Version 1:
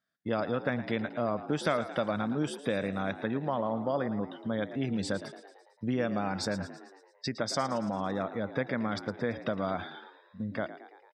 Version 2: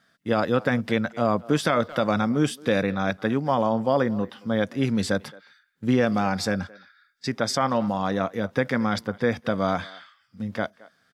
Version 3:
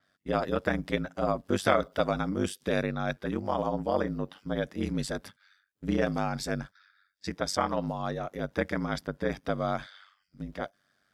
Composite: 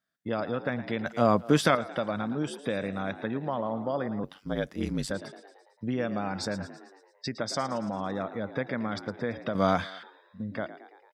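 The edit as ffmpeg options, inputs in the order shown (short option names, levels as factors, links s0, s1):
-filter_complex "[1:a]asplit=2[s0][s1];[0:a]asplit=4[s2][s3][s4][s5];[s2]atrim=end=1.062[s6];[s0]atrim=start=1.058:end=1.752[s7];[s3]atrim=start=1.748:end=4.242[s8];[2:a]atrim=start=4.238:end=5.112[s9];[s4]atrim=start=5.108:end=9.552[s10];[s1]atrim=start=9.548:end=10.032[s11];[s5]atrim=start=10.028[s12];[s6][s7]acrossfade=d=0.004:c1=hsin:c2=hsin[s13];[s13][s8]acrossfade=d=0.004:c1=hsin:c2=hsin[s14];[s14][s9]acrossfade=d=0.004:c1=hsin:c2=hsin[s15];[s15][s10]acrossfade=d=0.004:c1=hsin:c2=hsin[s16];[s16][s11]acrossfade=d=0.004:c1=hsin:c2=hsin[s17];[s17][s12]acrossfade=d=0.004:c1=hsin:c2=hsin"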